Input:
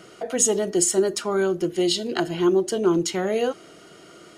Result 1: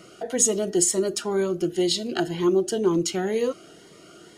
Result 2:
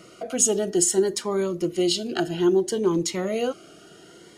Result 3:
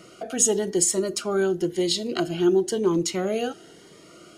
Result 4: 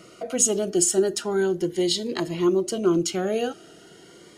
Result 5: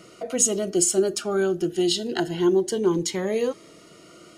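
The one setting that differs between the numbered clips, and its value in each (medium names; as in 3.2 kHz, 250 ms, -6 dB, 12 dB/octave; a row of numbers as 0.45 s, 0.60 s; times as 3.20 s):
Shepard-style phaser, rate: 2 Hz, 0.62 Hz, 0.97 Hz, 0.4 Hz, 0.25 Hz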